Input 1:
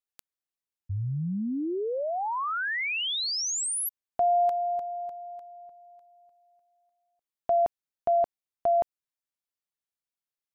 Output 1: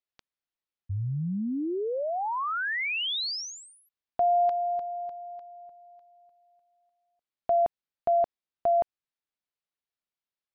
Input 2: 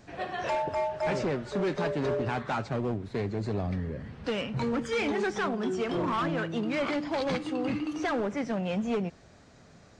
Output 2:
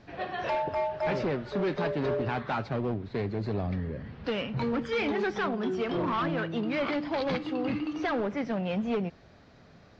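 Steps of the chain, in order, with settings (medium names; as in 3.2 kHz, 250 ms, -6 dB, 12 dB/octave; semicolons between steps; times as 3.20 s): low-pass 4.9 kHz 24 dB/octave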